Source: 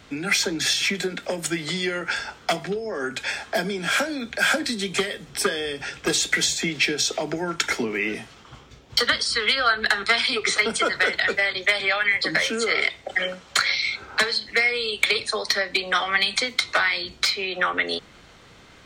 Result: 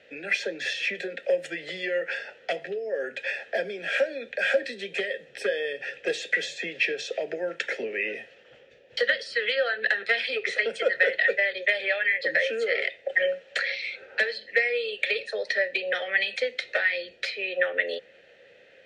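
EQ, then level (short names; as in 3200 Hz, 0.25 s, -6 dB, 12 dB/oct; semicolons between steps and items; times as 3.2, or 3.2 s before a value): vowel filter e; bell 290 Hz -4 dB 0.6 oct; +8.0 dB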